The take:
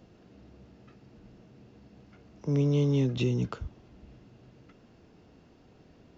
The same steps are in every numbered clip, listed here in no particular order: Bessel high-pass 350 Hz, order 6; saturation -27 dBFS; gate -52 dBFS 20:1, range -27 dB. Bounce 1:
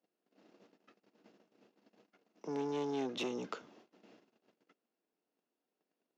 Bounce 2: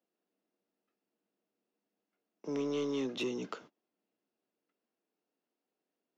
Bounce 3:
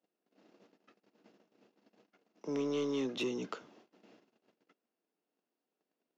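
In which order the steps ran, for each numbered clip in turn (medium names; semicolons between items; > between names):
gate > saturation > Bessel high-pass; Bessel high-pass > gate > saturation; gate > Bessel high-pass > saturation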